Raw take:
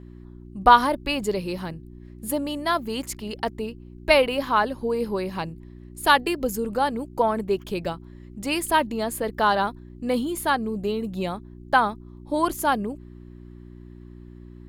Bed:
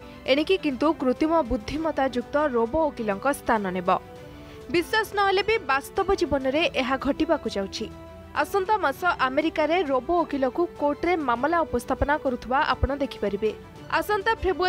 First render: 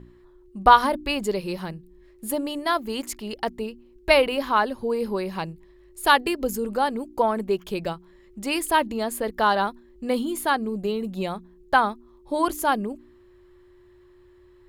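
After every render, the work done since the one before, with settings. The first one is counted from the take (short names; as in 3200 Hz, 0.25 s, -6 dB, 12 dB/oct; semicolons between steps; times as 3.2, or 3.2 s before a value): de-hum 60 Hz, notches 5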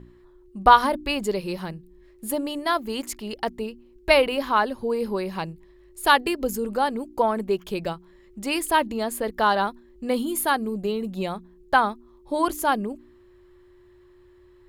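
10.19–10.74 bell 12000 Hz +8.5 dB 0.79 oct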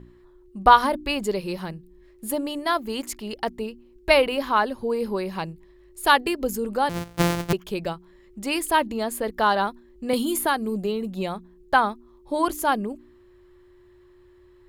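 6.89–7.53 sample sorter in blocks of 256 samples; 10.13–10.84 three-band squash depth 70%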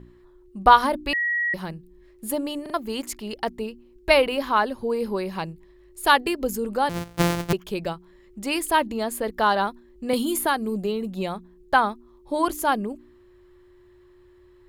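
1.13–1.54 bleep 1910 Hz -21 dBFS; 2.62 stutter in place 0.04 s, 3 plays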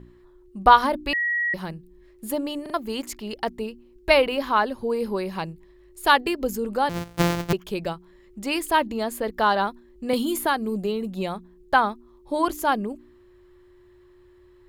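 dynamic EQ 10000 Hz, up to -5 dB, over -48 dBFS, Q 1.5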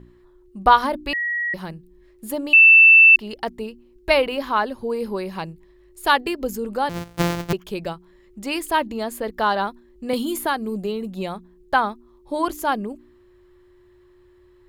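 2.53–3.16 bleep 2660 Hz -6.5 dBFS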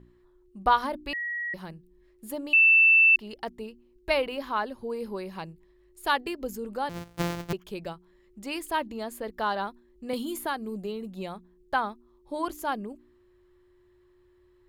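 gain -8 dB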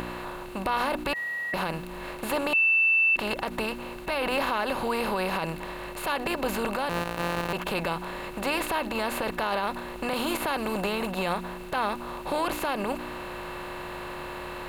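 per-bin compression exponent 0.4; limiter -18 dBFS, peak gain reduction 11 dB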